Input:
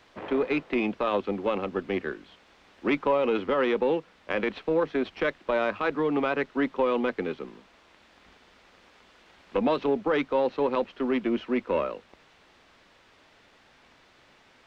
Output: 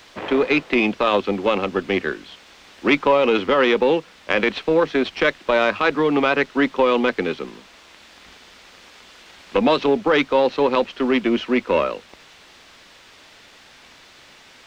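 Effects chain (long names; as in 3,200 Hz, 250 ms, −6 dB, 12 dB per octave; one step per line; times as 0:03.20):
high-shelf EQ 2,800 Hz +11.5 dB
level +7 dB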